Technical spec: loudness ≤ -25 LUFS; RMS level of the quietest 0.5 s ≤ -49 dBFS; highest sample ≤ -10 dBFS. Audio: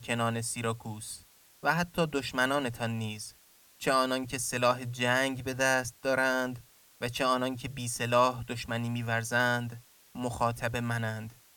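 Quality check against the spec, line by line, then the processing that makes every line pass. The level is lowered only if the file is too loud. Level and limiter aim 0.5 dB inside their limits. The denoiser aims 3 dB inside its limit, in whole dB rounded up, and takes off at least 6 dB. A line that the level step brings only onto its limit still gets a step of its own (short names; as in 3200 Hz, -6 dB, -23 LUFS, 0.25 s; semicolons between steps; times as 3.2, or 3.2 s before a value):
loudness -30.5 LUFS: OK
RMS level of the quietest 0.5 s -60 dBFS: OK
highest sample -12.5 dBFS: OK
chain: none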